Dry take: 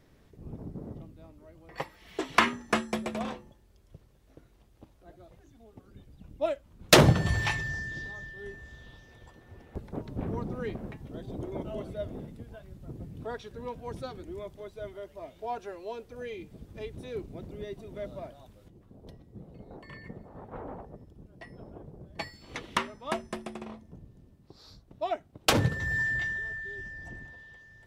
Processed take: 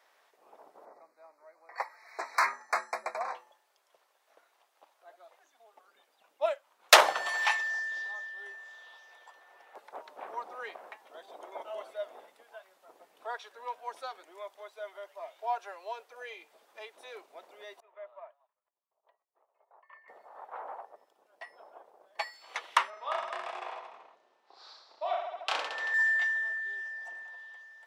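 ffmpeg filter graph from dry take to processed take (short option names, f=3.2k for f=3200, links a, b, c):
-filter_complex "[0:a]asettb=1/sr,asplit=3[a][b][c];[a]atrim=end=0.854[d];[b]atrim=start=0.85:end=3.35,asetpts=PTS-STARTPTS,afade=t=in:d=0.004:c=qsin,afade=t=out:st=2.496:d=0.004:c=qsin,highshelf=f=7.4k:g=-8.5,asoftclip=type=hard:threshold=-24dB,asuperstop=centerf=3100:order=12:qfactor=2.1[e];[c]atrim=start=3.346[f];[d][e]acrossfade=d=0.004:c1=hsin:c2=qsin[g];[g][f]acrossfade=d=0.004:c1=qsin:c2=hsin,asettb=1/sr,asplit=3[h][i][j];[h]atrim=end=17.804[k];[i]atrim=start=17.8:end=20.08,asetpts=PTS-STARTPTS,afade=t=in:d=0.004:c=qsin,afade=t=out:st=2.276:d=0.004:c=qsin,agate=range=-33dB:threshold=-43dB:ratio=3:release=100:detection=peak,highpass=f=480:w=0.5412,highpass=f=480:w=1.3066,equalizer=f=500:t=q:w=4:g=-10,equalizer=f=760:t=q:w=4:g=-9,equalizer=f=1.5k:t=q:w=4:g=-9,equalizer=f=2.1k:t=q:w=4:g=-6,lowpass=f=2.1k:w=0.5412,lowpass=f=2.1k:w=1.3066[l];[j]atrim=start=20.076[m];[k][l]acrossfade=d=0.004:c1=hsin:c2=qsin[n];[n][m]acrossfade=d=0.004:c1=qsin:c2=hsin,asettb=1/sr,asplit=3[o][p][q];[o]atrim=end=22.904[r];[p]atrim=start=22.9:end=25.94,asetpts=PTS-STARTPTS,afade=t=in:d=0.004:c=qsin,afade=t=out:st=3.036:d=0.004:c=qsin,lowpass=4.8k,acompressor=threshold=-33dB:ratio=4:attack=3.2:release=140:knee=1:detection=peak,aecho=1:1:30|66|109.2|161|223.2|297.9|387.5:0.794|0.631|0.501|0.398|0.316|0.251|0.2,atrim=end_sample=134064[s];[q]atrim=start=25.936[t];[r][s]acrossfade=d=0.004:c1=hsin:c2=qsin[u];[u][t]acrossfade=d=0.004:c1=qsin:c2=hsin,highpass=f=760:w=0.5412,highpass=f=760:w=1.3066,tiltshelf=f=1.4k:g=4.5,volume=4dB"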